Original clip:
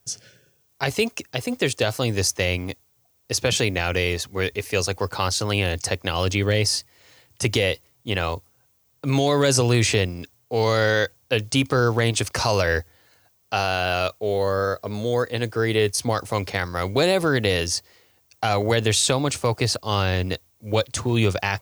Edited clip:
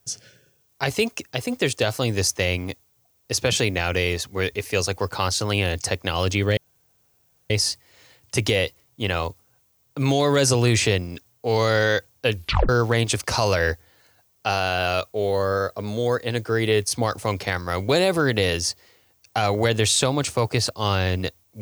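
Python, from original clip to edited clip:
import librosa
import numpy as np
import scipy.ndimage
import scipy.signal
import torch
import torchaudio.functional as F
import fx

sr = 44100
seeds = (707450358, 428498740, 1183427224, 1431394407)

y = fx.edit(x, sr, fx.insert_room_tone(at_s=6.57, length_s=0.93),
    fx.tape_stop(start_s=11.4, length_s=0.36), tone=tone)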